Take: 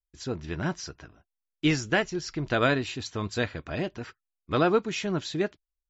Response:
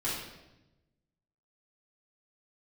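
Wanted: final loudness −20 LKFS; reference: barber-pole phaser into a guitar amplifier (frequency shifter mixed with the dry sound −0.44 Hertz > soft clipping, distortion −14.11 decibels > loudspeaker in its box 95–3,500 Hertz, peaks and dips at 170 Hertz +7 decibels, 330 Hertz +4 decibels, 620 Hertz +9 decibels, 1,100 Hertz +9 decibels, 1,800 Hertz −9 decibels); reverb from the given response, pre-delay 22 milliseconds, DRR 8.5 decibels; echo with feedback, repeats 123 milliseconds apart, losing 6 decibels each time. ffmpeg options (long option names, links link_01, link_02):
-filter_complex "[0:a]aecho=1:1:123|246|369|492|615|738:0.501|0.251|0.125|0.0626|0.0313|0.0157,asplit=2[link_01][link_02];[1:a]atrim=start_sample=2205,adelay=22[link_03];[link_02][link_03]afir=irnorm=-1:irlink=0,volume=-15dB[link_04];[link_01][link_04]amix=inputs=2:normalize=0,asplit=2[link_05][link_06];[link_06]afreqshift=-0.44[link_07];[link_05][link_07]amix=inputs=2:normalize=1,asoftclip=threshold=-20dB,highpass=95,equalizer=frequency=170:width_type=q:width=4:gain=7,equalizer=frequency=330:width_type=q:width=4:gain=4,equalizer=frequency=620:width_type=q:width=4:gain=9,equalizer=frequency=1100:width_type=q:width=4:gain=9,equalizer=frequency=1800:width_type=q:width=4:gain=-9,lowpass=frequency=3500:width=0.5412,lowpass=frequency=3500:width=1.3066,volume=8.5dB"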